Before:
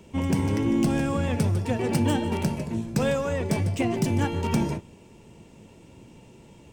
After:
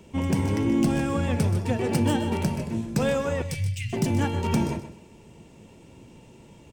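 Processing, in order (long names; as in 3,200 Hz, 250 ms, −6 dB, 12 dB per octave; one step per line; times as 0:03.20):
0:03.42–0:03.93: inverse Chebyshev band-stop filter 320–900 Hz, stop band 60 dB
on a send: repeating echo 127 ms, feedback 26%, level −12 dB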